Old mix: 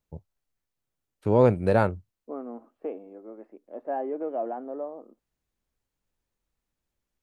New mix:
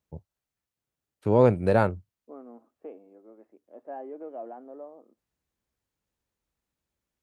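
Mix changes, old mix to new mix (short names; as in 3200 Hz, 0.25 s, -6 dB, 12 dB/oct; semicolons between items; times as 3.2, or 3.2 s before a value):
second voice -8.5 dB; master: add HPF 52 Hz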